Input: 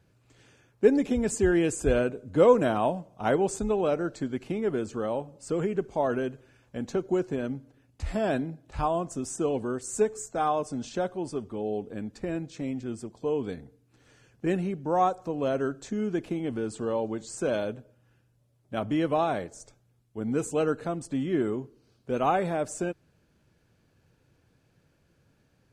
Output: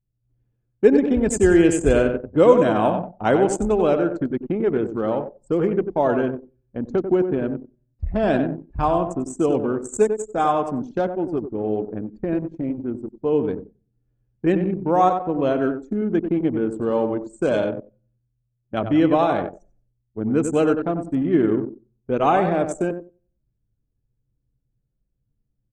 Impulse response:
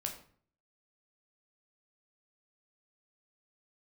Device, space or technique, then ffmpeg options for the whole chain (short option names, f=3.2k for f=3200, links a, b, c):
voice memo with heavy noise removal: -filter_complex "[0:a]asettb=1/sr,asplit=3[a][b][c];[a]atrim=end=7.094[d];[b]atrim=start=7.09:end=8.28,asetpts=PTS-STARTPTS,afade=t=in:d=0.004:c=qsin,afade=t=out:st=1.186:d=0.004:c=qsin,lowpass=7k[e];[c]atrim=start=8.276[f];[d][e]acrossfade=d=0.004:c1=hsin:c2=qsin[g];[g][f]acrossfade=d=0.004:c1=qsin:c2=hsin,aecho=1:1:93|186|279|372|465:0.447|0.197|0.0865|0.0381|0.0167,adynamicequalizer=threshold=0.00891:dfrequency=320:dqfactor=6.1:tfrequency=320:tqfactor=6.1:attack=5:release=100:ratio=0.375:range=2:mode=boostabove:tftype=bell,anlmdn=15.8,dynaudnorm=f=140:g=3:m=5.5dB,volume=1dB"